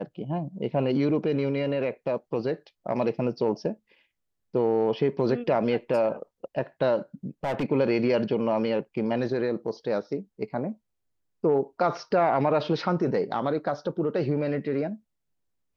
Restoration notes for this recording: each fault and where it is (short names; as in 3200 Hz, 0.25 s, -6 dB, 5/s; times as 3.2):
7.44–7.64 clipped -24 dBFS